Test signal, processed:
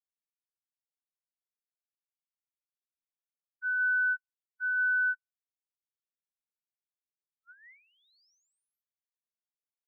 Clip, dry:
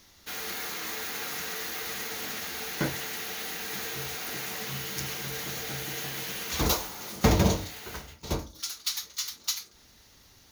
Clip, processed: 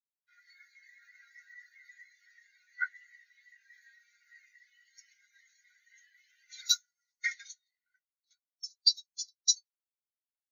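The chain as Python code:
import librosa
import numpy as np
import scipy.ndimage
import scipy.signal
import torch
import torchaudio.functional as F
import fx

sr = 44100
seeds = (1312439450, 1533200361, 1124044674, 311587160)

y = scipy.signal.sosfilt(scipy.signal.cheby1(6, 3, 1400.0, 'highpass', fs=sr, output='sos'), x)
y = y + 10.0 ** (-21.5 / 20.0) * np.pad(y, (int(174 * sr / 1000.0), 0))[:len(y)]
y = fx.spectral_expand(y, sr, expansion=4.0)
y = y * 10.0 ** (4.0 / 20.0)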